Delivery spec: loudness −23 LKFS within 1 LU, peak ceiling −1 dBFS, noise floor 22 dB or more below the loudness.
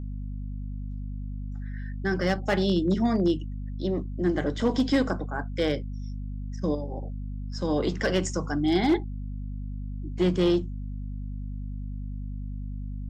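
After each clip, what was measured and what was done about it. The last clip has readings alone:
share of clipped samples 0.4%; peaks flattened at −16.0 dBFS; mains hum 50 Hz; hum harmonics up to 250 Hz; level of the hum −31 dBFS; integrated loudness −29.0 LKFS; sample peak −16.0 dBFS; target loudness −23.0 LKFS
→ clipped peaks rebuilt −16 dBFS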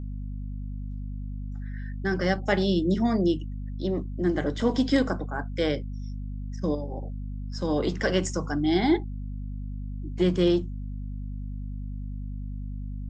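share of clipped samples 0.0%; mains hum 50 Hz; hum harmonics up to 250 Hz; level of the hum −31 dBFS
→ hum removal 50 Hz, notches 5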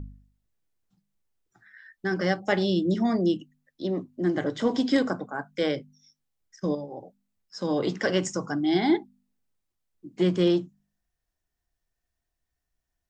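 mains hum none found; integrated loudness −27.0 LKFS; sample peak −10.0 dBFS; target loudness −23.0 LKFS
→ level +4 dB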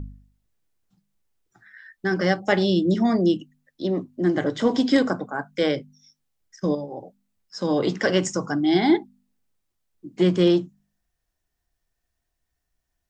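integrated loudness −23.0 LKFS; sample peak −6.0 dBFS; background noise floor −79 dBFS

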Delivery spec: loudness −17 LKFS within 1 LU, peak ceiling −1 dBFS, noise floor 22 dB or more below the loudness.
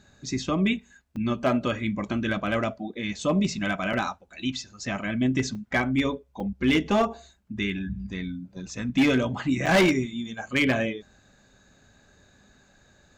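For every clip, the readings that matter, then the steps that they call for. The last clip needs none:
share of clipped samples 0.8%; peaks flattened at −15.5 dBFS; number of dropouts 5; longest dropout 3.9 ms; integrated loudness −26.5 LKFS; sample peak −15.5 dBFS; target loudness −17.0 LKFS
→ clipped peaks rebuilt −15.5 dBFS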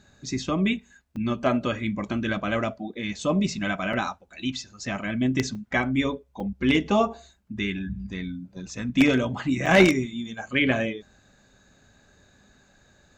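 share of clipped samples 0.0%; number of dropouts 5; longest dropout 3.9 ms
→ repair the gap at 0:01.16/0:03.93/0:05.55/0:06.40/0:09.66, 3.9 ms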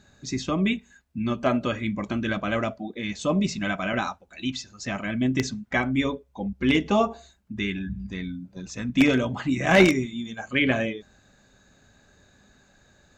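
number of dropouts 0; integrated loudness −25.5 LKFS; sample peak −6.5 dBFS; target loudness −17.0 LKFS
→ level +8.5 dB
brickwall limiter −1 dBFS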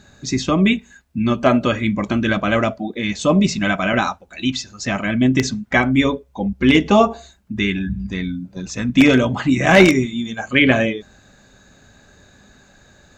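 integrated loudness −17.5 LKFS; sample peak −1.0 dBFS; background noise floor −52 dBFS

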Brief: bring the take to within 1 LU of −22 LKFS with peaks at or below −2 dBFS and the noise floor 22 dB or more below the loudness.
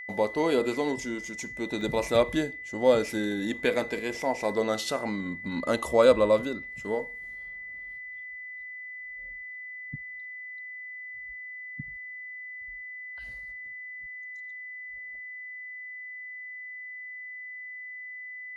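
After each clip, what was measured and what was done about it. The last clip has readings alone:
number of dropouts 1; longest dropout 1.3 ms; interfering tone 2,000 Hz; level of the tone −38 dBFS; integrated loudness −31.0 LKFS; sample peak −8.0 dBFS; target loudness −22.0 LKFS
→ repair the gap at 0:01.81, 1.3 ms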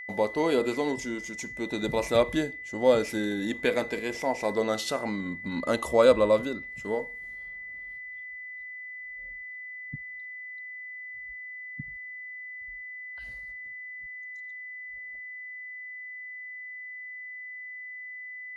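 number of dropouts 0; interfering tone 2,000 Hz; level of the tone −38 dBFS
→ notch filter 2,000 Hz, Q 30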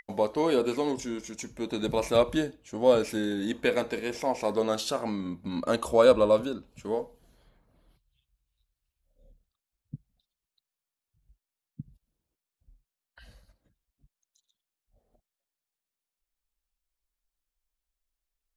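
interfering tone none found; integrated loudness −27.5 LKFS; sample peak −8.0 dBFS; target loudness −22.0 LKFS
→ level +5.5 dB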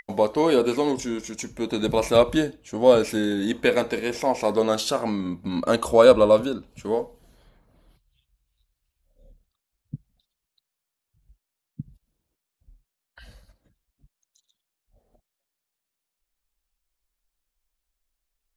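integrated loudness −22.0 LKFS; sample peak −2.5 dBFS; background noise floor −84 dBFS

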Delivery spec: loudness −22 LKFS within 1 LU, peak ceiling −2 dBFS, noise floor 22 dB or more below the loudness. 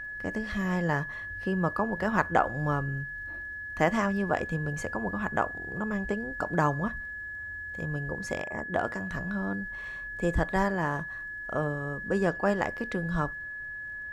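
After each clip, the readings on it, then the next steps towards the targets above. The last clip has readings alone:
crackle rate 20 per second; interfering tone 1,700 Hz; level of the tone −36 dBFS; integrated loudness −30.5 LKFS; sample peak −8.5 dBFS; target loudness −22.0 LKFS
→ click removal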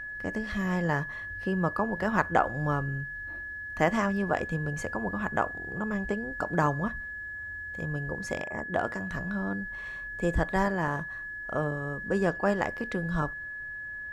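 crackle rate 0 per second; interfering tone 1,700 Hz; level of the tone −36 dBFS
→ notch filter 1,700 Hz, Q 30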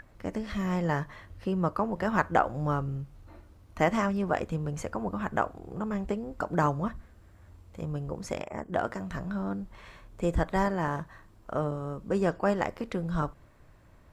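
interfering tone none found; integrated loudness −31.0 LKFS; sample peak −9.0 dBFS; target loudness −22.0 LKFS
→ level +9 dB
brickwall limiter −2 dBFS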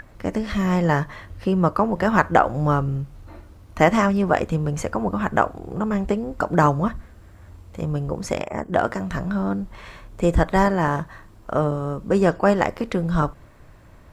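integrated loudness −22.0 LKFS; sample peak −2.0 dBFS; background noise floor −47 dBFS

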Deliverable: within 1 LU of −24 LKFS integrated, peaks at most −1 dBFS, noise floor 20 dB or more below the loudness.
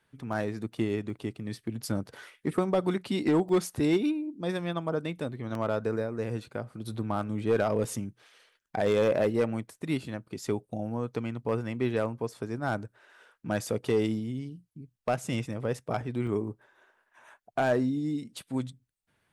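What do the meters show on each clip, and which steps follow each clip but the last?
share of clipped samples 0.3%; peaks flattened at −18.0 dBFS; number of dropouts 7; longest dropout 1.6 ms; integrated loudness −31.0 LKFS; sample peak −18.0 dBFS; target loudness −24.0 LKFS
→ clipped peaks rebuilt −18 dBFS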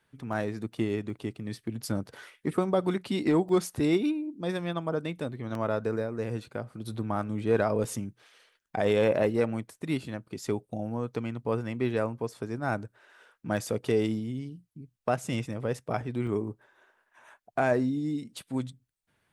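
share of clipped samples 0.0%; number of dropouts 7; longest dropout 1.6 ms
→ repair the gap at 0:00.33/0:01.10/0:03.49/0:05.55/0:07.84/0:15.53/0:16.27, 1.6 ms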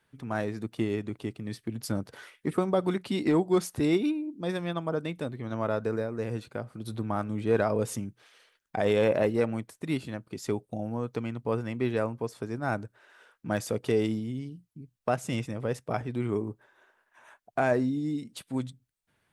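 number of dropouts 0; integrated loudness −30.5 LKFS; sample peak −12.0 dBFS; target loudness −24.0 LKFS
→ level +6.5 dB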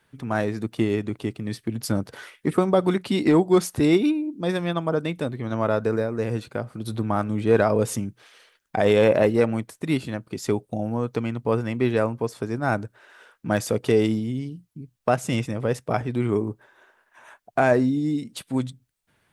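integrated loudness −24.0 LKFS; sample peak −5.5 dBFS; background noise floor −70 dBFS

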